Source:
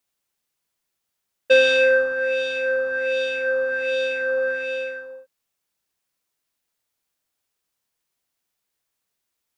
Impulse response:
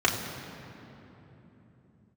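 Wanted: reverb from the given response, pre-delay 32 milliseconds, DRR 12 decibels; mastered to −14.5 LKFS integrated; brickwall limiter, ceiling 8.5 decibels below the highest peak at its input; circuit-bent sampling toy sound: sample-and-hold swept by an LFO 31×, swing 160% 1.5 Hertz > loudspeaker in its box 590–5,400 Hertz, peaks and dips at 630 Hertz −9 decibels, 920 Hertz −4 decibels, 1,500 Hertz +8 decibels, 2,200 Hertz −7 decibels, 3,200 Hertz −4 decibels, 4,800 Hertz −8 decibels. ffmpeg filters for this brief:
-filter_complex "[0:a]alimiter=limit=-14dB:level=0:latency=1,asplit=2[link_01][link_02];[1:a]atrim=start_sample=2205,adelay=32[link_03];[link_02][link_03]afir=irnorm=-1:irlink=0,volume=-27dB[link_04];[link_01][link_04]amix=inputs=2:normalize=0,acrusher=samples=31:mix=1:aa=0.000001:lfo=1:lforange=49.6:lforate=1.5,highpass=590,equalizer=frequency=630:width_type=q:width=4:gain=-9,equalizer=frequency=920:width_type=q:width=4:gain=-4,equalizer=frequency=1500:width_type=q:width=4:gain=8,equalizer=frequency=2200:width_type=q:width=4:gain=-7,equalizer=frequency=3200:width_type=q:width=4:gain=-4,equalizer=frequency=4800:width_type=q:width=4:gain=-8,lowpass=frequency=5400:width=0.5412,lowpass=frequency=5400:width=1.3066,volume=11dB"

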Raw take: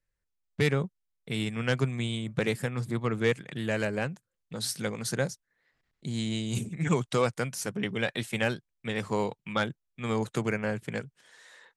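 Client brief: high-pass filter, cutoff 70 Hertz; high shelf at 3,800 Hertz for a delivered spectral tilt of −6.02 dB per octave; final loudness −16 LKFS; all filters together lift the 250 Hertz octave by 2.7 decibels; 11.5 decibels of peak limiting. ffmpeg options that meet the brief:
ffmpeg -i in.wav -af "highpass=70,equalizer=frequency=250:width_type=o:gain=3.5,highshelf=frequency=3800:gain=-8.5,volume=18dB,alimiter=limit=-4.5dB:level=0:latency=1" out.wav

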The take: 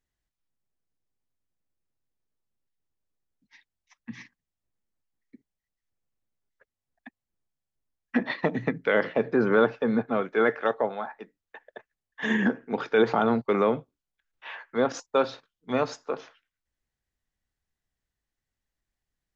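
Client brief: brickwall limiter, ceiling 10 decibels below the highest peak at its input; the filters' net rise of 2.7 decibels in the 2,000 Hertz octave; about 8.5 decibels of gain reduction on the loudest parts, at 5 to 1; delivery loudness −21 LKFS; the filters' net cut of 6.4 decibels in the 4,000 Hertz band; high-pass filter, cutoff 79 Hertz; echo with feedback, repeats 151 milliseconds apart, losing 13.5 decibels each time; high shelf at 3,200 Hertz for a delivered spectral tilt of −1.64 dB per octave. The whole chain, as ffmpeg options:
ffmpeg -i in.wav -af "highpass=79,equalizer=frequency=2000:width_type=o:gain=6.5,highshelf=frequency=3200:gain=-6.5,equalizer=frequency=4000:width_type=o:gain=-6,acompressor=threshold=-26dB:ratio=5,alimiter=level_in=0.5dB:limit=-24dB:level=0:latency=1,volume=-0.5dB,aecho=1:1:151|302:0.211|0.0444,volume=15.5dB" out.wav

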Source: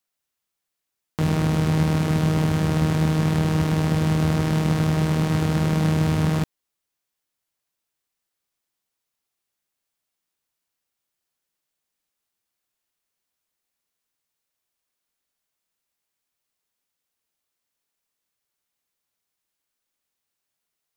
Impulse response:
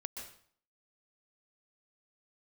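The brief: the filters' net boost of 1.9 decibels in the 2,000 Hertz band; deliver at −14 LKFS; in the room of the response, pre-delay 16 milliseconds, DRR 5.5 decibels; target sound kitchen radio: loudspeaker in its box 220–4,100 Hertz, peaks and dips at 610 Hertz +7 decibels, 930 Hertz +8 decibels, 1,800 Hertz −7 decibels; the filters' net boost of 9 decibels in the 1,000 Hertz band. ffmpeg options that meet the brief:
-filter_complex "[0:a]equalizer=frequency=1000:width_type=o:gain=3.5,equalizer=frequency=2000:width_type=o:gain=5,asplit=2[link_01][link_02];[1:a]atrim=start_sample=2205,adelay=16[link_03];[link_02][link_03]afir=irnorm=-1:irlink=0,volume=-4dB[link_04];[link_01][link_04]amix=inputs=2:normalize=0,highpass=220,equalizer=frequency=610:width_type=q:width=4:gain=7,equalizer=frequency=930:width_type=q:width=4:gain=8,equalizer=frequency=1800:width_type=q:width=4:gain=-7,lowpass=frequency=4100:width=0.5412,lowpass=frequency=4100:width=1.3066,volume=8dB"

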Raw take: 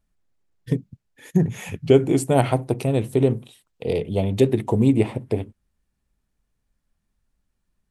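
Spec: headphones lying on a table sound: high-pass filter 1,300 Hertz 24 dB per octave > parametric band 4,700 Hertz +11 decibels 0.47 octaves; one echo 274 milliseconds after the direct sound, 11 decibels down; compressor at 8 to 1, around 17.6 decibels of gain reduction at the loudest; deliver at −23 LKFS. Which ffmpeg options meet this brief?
ffmpeg -i in.wav -af "acompressor=threshold=-28dB:ratio=8,highpass=frequency=1300:width=0.5412,highpass=frequency=1300:width=1.3066,equalizer=frequency=4700:width_type=o:width=0.47:gain=11,aecho=1:1:274:0.282,volume=22dB" out.wav

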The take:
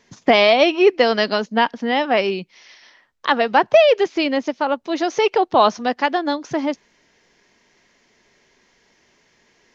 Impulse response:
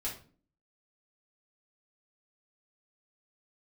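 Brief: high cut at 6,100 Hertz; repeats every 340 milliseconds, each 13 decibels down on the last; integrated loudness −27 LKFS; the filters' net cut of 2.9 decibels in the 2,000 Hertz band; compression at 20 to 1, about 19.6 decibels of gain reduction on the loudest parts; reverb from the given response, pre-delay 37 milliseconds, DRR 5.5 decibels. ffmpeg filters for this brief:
-filter_complex "[0:a]lowpass=6100,equalizer=frequency=2000:width_type=o:gain=-3.5,acompressor=threshold=-28dB:ratio=20,aecho=1:1:340|680|1020:0.224|0.0493|0.0108,asplit=2[link_01][link_02];[1:a]atrim=start_sample=2205,adelay=37[link_03];[link_02][link_03]afir=irnorm=-1:irlink=0,volume=-7dB[link_04];[link_01][link_04]amix=inputs=2:normalize=0,volume=5.5dB"

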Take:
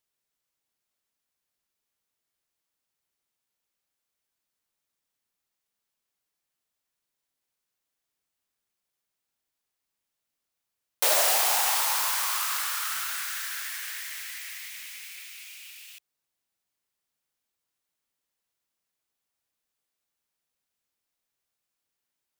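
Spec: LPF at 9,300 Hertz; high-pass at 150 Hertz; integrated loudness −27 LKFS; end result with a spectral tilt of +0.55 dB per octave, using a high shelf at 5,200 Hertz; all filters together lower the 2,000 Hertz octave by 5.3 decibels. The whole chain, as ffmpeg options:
ffmpeg -i in.wav -af "highpass=150,lowpass=9300,equalizer=frequency=2000:width_type=o:gain=-8,highshelf=frequency=5200:gain=6.5,volume=-0.5dB" out.wav

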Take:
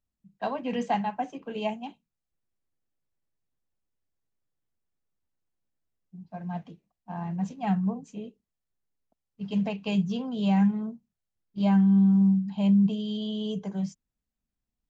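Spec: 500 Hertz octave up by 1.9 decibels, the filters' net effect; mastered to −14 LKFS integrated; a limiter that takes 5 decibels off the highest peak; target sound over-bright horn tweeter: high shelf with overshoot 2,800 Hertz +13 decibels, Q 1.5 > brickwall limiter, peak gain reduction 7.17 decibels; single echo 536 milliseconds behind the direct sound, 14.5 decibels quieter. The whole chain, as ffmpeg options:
ffmpeg -i in.wav -af "equalizer=frequency=500:width_type=o:gain=3,alimiter=limit=-18.5dB:level=0:latency=1,highshelf=frequency=2800:width_type=q:width=1.5:gain=13,aecho=1:1:536:0.188,volume=17.5dB,alimiter=limit=-5.5dB:level=0:latency=1" out.wav

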